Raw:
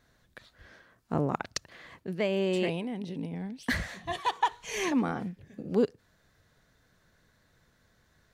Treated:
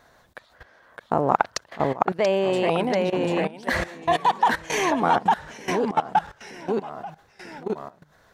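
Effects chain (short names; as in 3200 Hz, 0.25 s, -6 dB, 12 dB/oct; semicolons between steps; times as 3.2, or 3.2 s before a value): high shelf 2700 Hz +5.5 dB; echoes that change speed 0.59 s, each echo -1 st, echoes 3, each echo -6 dB; level quantiser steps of 17 dB; bell 810 Hz +14.5 dB 2 oct; gain +5 dB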